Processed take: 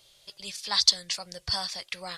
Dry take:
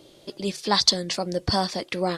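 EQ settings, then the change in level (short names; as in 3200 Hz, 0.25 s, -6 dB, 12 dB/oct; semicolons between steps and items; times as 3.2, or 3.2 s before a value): passive tone stack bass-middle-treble 10-0-10; 0.0 dB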